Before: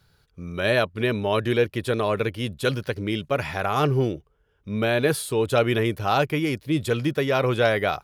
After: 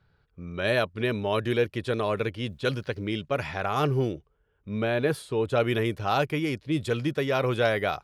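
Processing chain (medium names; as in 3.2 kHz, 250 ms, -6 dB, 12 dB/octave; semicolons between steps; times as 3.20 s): level-controlled noise filter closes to 2.4 kHz, open at -18 dBFS; 2.41–3.11 s: word length cut 12-bit, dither none; 4.82–5.60 s: treble shelf 3.8 kHz -9.5 dB; trim -3.5 dB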